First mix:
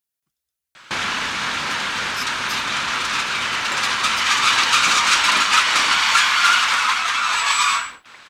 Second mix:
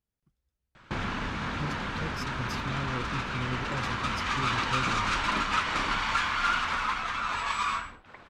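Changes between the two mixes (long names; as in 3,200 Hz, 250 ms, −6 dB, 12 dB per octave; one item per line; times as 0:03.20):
first sound −8.5 dB
master: add spectral tilt −4.5 dB per octave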